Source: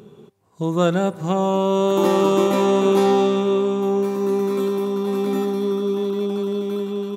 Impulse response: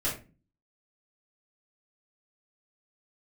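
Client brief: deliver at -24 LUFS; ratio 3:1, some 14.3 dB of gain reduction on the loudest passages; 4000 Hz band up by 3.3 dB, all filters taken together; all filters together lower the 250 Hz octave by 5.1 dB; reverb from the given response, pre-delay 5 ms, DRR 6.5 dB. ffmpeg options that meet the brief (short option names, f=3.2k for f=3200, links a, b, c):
-filter_complex "[0:a]equalizer=f=250:t=o:g=-8.5,equalizer=f=4k:t=o:g=4,acompressor=threshold=-36dB:ratio=3,asplit=2[a][b];[1:a]atrim=start_sample=2205,adelay=5[c];[b][c]afir=irnorm=-1:irlink=0,volume=-13.5dB[d];[a][d]amix=inputs=2:normalize=0,volume=9dB"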